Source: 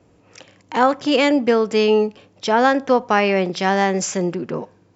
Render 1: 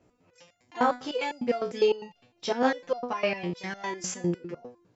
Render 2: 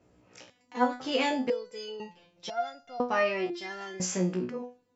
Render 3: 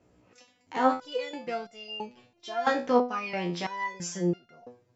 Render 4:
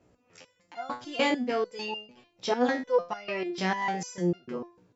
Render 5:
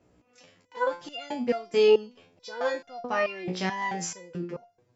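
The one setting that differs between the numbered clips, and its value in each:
step-sequenced resonator, speed: 9.9, 2, 3, 6.7, 4.6 Hertz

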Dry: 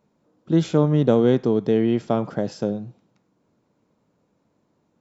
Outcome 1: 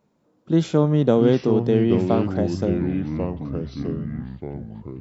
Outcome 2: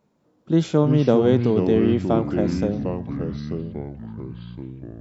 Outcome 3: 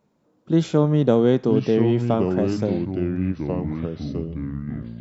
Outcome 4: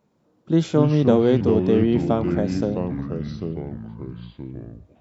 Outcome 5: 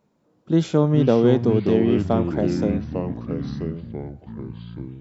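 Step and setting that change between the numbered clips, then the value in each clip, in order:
delay with pitch and tempo change per echo, delay time: 545, 207, 843, 114, 303 milliseconds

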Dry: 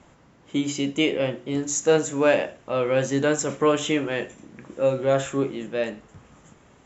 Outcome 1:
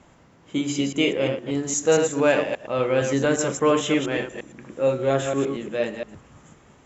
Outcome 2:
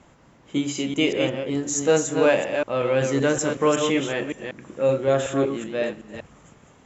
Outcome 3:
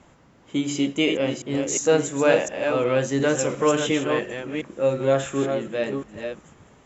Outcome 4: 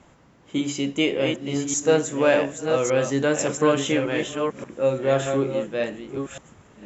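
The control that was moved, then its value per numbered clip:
delay that plays each chunk backwards, delay time: 116, 188, 355, 580 milliseconds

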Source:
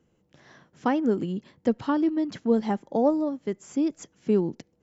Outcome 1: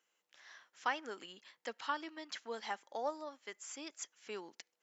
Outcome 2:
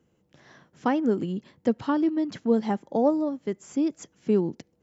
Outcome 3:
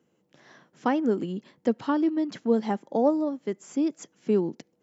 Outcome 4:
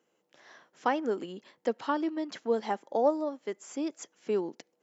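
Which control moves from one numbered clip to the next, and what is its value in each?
high-pass filter, corner frequency: 1,400, 42, 180, 480 Hertz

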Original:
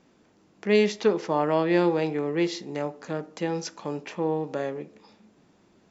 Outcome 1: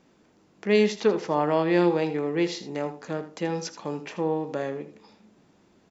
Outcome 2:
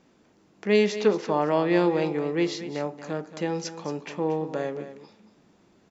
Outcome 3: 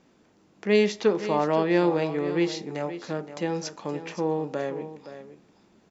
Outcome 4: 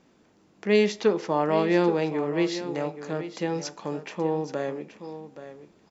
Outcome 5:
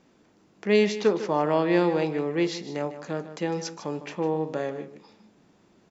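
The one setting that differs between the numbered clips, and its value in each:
single-tap delay, delay time: 80, 228, 520, 826, 153 milliseconds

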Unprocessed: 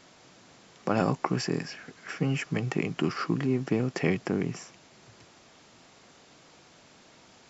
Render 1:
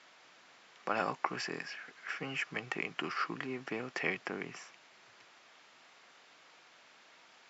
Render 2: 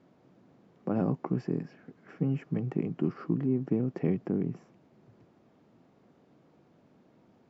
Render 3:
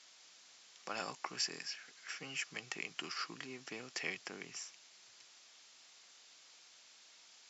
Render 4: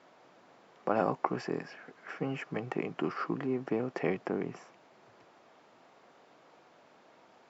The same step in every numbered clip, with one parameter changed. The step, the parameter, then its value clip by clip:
resonant band-pass, frequency: 1,900, 210, 5,500, 730 Hertz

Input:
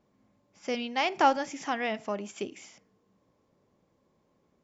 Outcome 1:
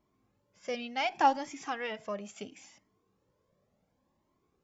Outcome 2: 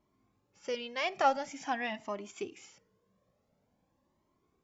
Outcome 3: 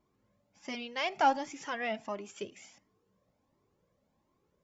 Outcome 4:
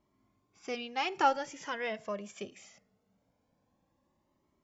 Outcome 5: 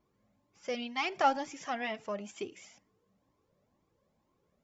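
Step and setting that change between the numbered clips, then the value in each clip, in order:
flanger whose copies keep moving one way, speed: 0.7, 0.47, 1.4, 0.22, 2.1 Hertz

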